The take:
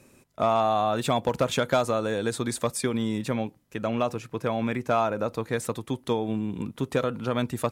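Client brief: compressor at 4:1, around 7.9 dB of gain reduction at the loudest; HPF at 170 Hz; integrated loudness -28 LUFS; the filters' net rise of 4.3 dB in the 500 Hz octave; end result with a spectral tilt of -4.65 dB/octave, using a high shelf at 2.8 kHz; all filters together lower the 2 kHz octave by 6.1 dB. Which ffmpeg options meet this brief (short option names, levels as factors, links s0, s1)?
-af "highpass=170,equalizer=f=500:t=o:g=6,equalizer=f=2000:t=o:g=-6,highshelf=f=2800:g=-7.5,acompressor=threshold=0.0501:ratio=4,volume=1.41"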